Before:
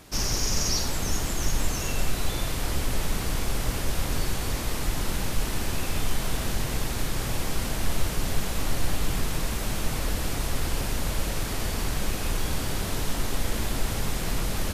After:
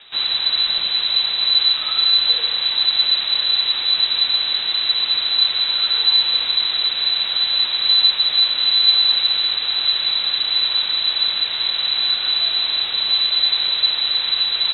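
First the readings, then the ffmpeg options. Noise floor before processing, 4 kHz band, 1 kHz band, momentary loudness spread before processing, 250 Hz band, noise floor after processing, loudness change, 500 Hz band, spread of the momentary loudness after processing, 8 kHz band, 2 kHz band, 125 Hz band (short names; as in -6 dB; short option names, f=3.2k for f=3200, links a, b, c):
-30 dBFS, +22.5 dB, +1.0 dB, 2 LU, under -15 dB, -24 dBFS, +14.5 dB, n/a, 4 LU, under -40 dB, +6.0 dB, under -20 dB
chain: -af "lowpass=f=3.4k:t=q:w=0.5098,lowpass=f=3.4k:t=q:w=0.6013,lowpass=f=3.4k:t=q:w=0.9,lowpass=f=3.4k:t=q:w=2.563,afreqshift=-4000,volume=6dB"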